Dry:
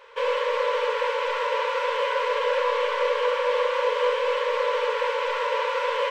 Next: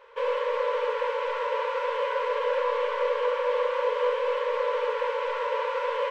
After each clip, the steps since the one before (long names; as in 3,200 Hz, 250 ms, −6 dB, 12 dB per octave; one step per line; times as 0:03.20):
high-shelf EQ 2,200 Hz −9.5 dB
level −1.5 dB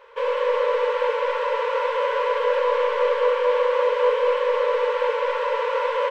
single-tap delay 206 ms −5.5 dB
level +3.5 dB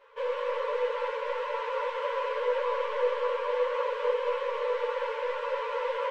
string-ensemble chorus
level −5 dB